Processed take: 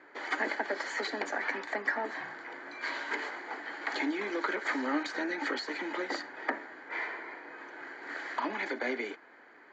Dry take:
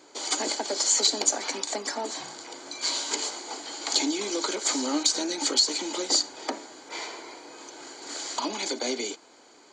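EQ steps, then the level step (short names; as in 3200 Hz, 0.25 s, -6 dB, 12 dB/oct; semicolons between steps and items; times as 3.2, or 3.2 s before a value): HPF 99 Hz 24 dB/oct; synth low-pass 1800 Hz, resonance Q 6.5; -4.5 dB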